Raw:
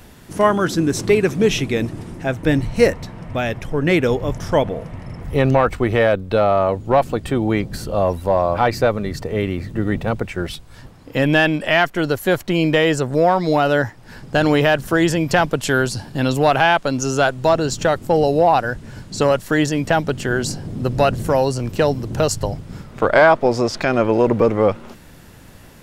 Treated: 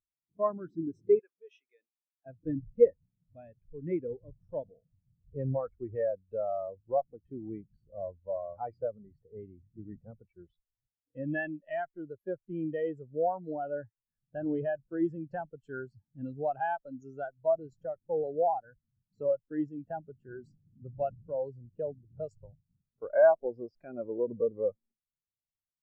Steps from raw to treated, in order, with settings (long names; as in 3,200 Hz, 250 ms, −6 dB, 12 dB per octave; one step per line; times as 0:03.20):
0:01.19–0:02.26: high-pass filter 770 Hz 12 dB per octave
every bin expanded away from the loudest bin 2.5 to 1
level −9 dB